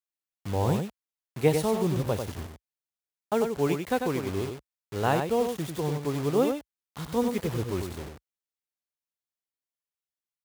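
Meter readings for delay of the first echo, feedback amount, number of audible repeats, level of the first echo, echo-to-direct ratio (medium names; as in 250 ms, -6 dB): 95 ms, no regular repeats, 1, -6.0 dB, -6.0 dB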